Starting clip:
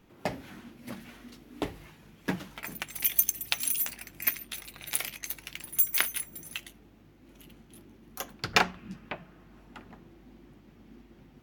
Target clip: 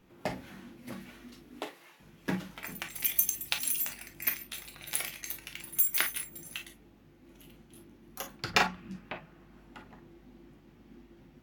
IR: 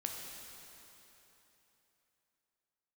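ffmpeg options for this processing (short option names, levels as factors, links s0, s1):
-filter_complex "[0:a]asettb=1/sr,asplit=3[s0][s1][s2];[s0]atrim=end=1.594[s3];[s1]atrim=start=1.59:end=2,asetpts=PTS-STARTPTS,afade=t=in:d=0.004:c=qsin,afade=t=out:st=0.406:d=0.004:c=qsin,highpass=510[s4];[s2]atrim=start=1.996[s5];[s3][s4]acrossfade=d=0.004:c1=hsin:c2=qsin[s6];[s6][s5]acrossfade=d=0.004:c1=qsin:c2=hsin[s7];[1:a]atrim=start_sample=2205,atrim=end_sample=4410,asetrate=74970,aresample=44100[s8];[s7][s8]afir=irnorm=-1:irlink=0,volume=1.58"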